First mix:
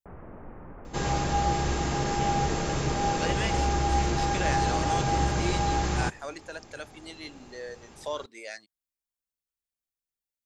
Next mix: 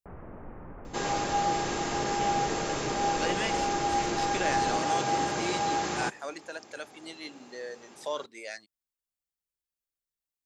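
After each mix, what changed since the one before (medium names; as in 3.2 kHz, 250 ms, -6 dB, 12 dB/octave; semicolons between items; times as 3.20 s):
second sound: add high-pass 250 Hz 12 dB/octave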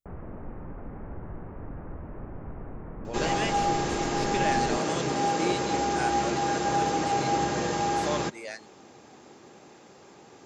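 second sound: entry +2.20 s; master: add bass shelf 430 Hz +6 dB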